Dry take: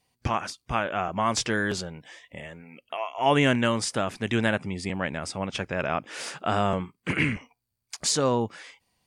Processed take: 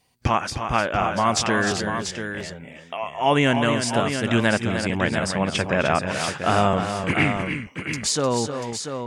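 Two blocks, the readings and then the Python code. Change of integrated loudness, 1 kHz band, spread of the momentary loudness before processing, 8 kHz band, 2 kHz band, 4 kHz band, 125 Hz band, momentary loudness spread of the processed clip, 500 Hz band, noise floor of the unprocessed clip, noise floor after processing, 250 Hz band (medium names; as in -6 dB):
+4.5 dB, +5.5 dB, 16 LU, +4.0 dB, +5.5 dB, +4.5 dB, +5.0 dB, 10 LU, +5.0 dB, -81 dBFS, -43 dBFS, +5.0 dB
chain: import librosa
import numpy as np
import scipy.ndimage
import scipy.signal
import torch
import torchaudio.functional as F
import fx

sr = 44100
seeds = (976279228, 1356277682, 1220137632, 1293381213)

y = fx.rider(x, sr, range_db=10, speed_s=2.0)
y = fx.echo_multitap(y, sr, ms=(262, 305, 689), db=(-16.5, -8.0, -8.0))
y = y * librosa.db_to_amplitude(3.5)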